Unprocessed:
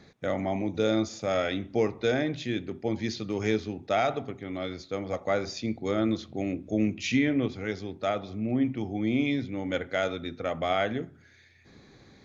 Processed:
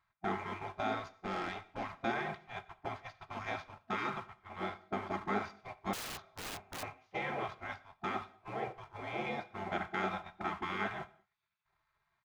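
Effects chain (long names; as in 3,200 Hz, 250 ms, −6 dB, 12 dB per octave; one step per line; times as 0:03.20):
compressor on every frequency bin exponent 0.6
in parallel at −10 dB: comparator with hysteresis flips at −33.5 dBFS
on the sum: resonant band-pass 510 Hz, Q 2
comb filter 3.8 ms, depth 65%
noise gate −28 dBFS, range −28 dB
gate on every frequency bin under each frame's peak −20 dB weak
0:00.99–0:01.90: tube saturation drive 38 dB, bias 0.6
on a send at −14.5 dB: convolution reverb, pre-delay 3 ms
0:05.93–0:06.83: on the sum: wrap-around overflow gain 43.5 dB
level +6 dB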